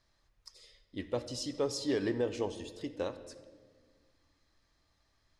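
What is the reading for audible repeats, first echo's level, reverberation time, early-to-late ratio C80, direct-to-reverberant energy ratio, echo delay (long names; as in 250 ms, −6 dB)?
no echo audible, no echo audible, 1.6 s, 14.0 dB, 11.0 dB, no echo audible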